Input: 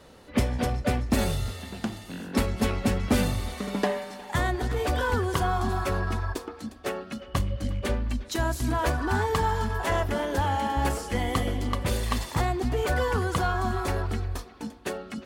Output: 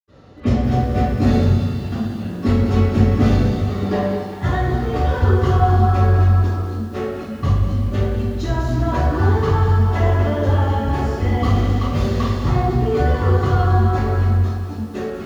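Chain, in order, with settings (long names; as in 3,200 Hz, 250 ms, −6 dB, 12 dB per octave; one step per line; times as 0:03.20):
0:11.33–0:12.20: log-companded quantiser 4 bits
convolution reverb RT60 1.1 s, pre-delay 77 ms
feedback echo at a low word length 195 ms, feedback 55%, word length 6 bits, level −10 dB
level −8 dB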